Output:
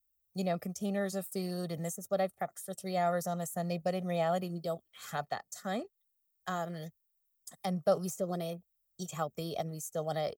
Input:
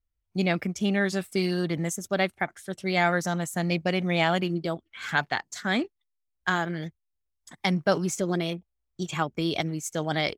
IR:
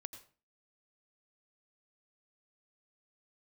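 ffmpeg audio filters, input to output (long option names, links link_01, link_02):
-filter_complex "[0:a]aemphasis=mode=production:type=bsi,acrossover=split=410|2000[link_01][link_02][link_03];[link_03]acompressor=threshold=-39dB:ratio=6[link_04];[link_01][link_02][link_04]amix=inputs=3:normalize=0,equalizer=frequency=2100:width_type=o:width=2.1:gain=-14,aecho=1:1:1.6:0.68,volume=-2.5dB"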